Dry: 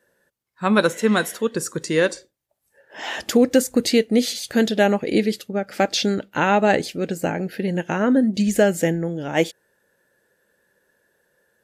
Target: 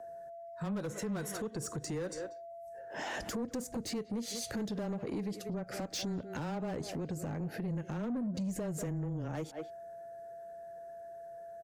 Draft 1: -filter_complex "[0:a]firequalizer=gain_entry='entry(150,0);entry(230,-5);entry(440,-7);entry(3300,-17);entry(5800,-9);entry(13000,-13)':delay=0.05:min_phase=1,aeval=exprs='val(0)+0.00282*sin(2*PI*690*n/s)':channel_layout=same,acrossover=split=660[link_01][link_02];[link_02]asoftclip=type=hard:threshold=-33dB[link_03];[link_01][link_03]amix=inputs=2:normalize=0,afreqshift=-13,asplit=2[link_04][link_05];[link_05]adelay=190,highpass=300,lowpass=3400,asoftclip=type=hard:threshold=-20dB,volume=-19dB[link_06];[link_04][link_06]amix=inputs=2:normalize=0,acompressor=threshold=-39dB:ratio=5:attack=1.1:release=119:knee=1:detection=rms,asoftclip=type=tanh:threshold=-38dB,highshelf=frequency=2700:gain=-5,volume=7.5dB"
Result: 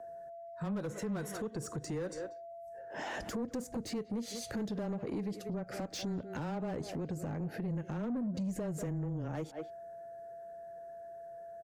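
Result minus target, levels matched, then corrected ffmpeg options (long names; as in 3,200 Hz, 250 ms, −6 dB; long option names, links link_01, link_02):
4,000 Hz band −3.0 dB
-filter_complex "[0:a]firequalizer=gain_entry='entry(150,0);entry(230,-5);entry(440,-7);entry(3300,-17);entry(5800,-9);entry(13000,-13)':delay=0.05:min_phase=1,aeval=exprs='val(0)+0.00282*sin(2*PI*690*n/s)':channel_layout=same,acrossover=split=660[link_01][link_02];[link_02]asoftclip=type=hard:threshold=-33dB[link_03];[link_01][link_03]amix=inputs=2:normalize=0,afreqshift=-13,asplit=2[link_04][link_05];[link_05]adelay=190,highpass=300,lowpass=3400,asoftclip=type=hard:threshold=-20dB,volume=-19dB[link_06];[link_04][link_06]amix=inputs=2:normalize=0,acompressor=threshold=-39dB:ratio=5:attack=1.1:release=119:knee=1:detection=rms,asoftclip=type=tanh:threshold=-38dB,volume=7.5dB"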